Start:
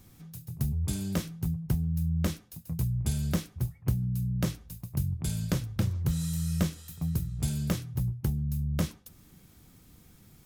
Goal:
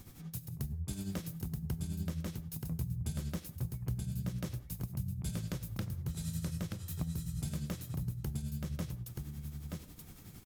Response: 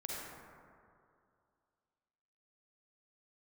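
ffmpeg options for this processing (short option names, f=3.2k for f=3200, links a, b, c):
-filter_complex "[0:a]acompressor=threshold=-39dB:ratio=5,tremolo=f=11:d=0.61,aecho=1:1:928:0.631,asplit=2[a][b];[1:a]atrim=start_sample=2205,afade=t=out:st=0.23:d=0.01,atrim=end_sample=10584[c];[b][c]afir=irnorm=-1:irlink=0,volume=-16dB[d];[a][d]amix=inputs=2:normalize=0,volume=4dB"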